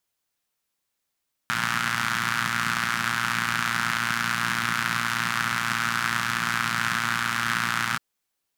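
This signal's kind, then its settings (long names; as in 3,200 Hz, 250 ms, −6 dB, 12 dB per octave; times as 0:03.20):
pulse-train model of a four-cylinder engine, steady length 6.48 s, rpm 3,500, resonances 170/1,400 Hz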